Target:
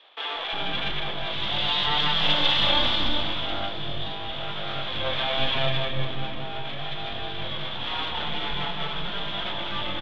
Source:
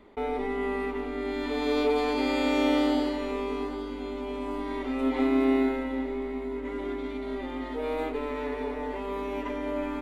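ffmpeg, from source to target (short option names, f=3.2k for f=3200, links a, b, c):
-filter_complex "[0:a]flanger=delay=20:depth=5.1:speed=0.84,asplit=2[a][b];[b]aecho=0:1:194:0.473[c];[a][c]amix=inputs=2:normalize=0,aeval=exprs='abs(val(0))':c=same,lowpass=f=3.4k:t=q:w=14,acrossover=split=410[d][e];[d]adelay=360[f];[f][e]amix=inputs=2:normalize=0,volume=4.5dB"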